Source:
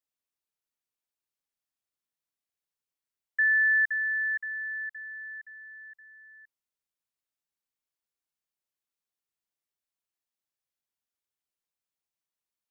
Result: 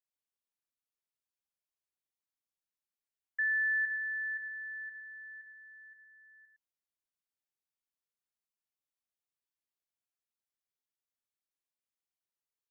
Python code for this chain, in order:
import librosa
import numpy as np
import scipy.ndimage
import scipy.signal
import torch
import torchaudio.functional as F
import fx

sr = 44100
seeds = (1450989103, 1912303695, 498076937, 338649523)

y = x + 10.0 ** (-6.5 / 20.0) * np.pad(x, (int(109 * sr / 1000.0), 0))[:len(x)]
y = F.gain(torch.from_numpy(y), -7.5).numpy()